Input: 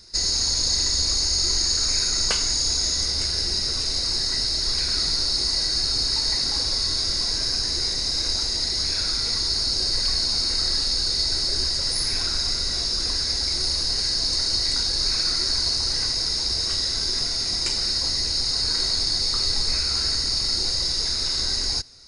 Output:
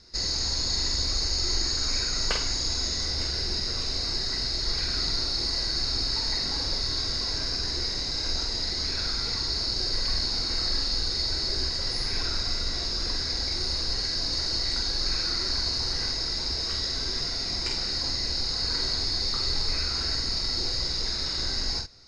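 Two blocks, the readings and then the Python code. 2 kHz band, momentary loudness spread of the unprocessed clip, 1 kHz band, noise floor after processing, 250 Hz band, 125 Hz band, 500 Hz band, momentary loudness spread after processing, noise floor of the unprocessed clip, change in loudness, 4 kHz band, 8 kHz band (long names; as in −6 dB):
−1.5 dB, 2 LU, −1.0 dB, −30 dBFS, −0.5 dB, −0.5 dB, −0.5 dB, 2 LU, −26 dBFS, −5.5 dB, −5.0 dB, −9.0 dB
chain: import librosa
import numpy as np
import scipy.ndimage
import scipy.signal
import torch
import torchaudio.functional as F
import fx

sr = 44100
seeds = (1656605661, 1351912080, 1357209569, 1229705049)

y = fx.air_absorb(x, sr, metres=120.0)
y = fx.doubler(y, sr, ms=47.0, db=-5)
y = y * librosa.db_to_amplitude(-1.5)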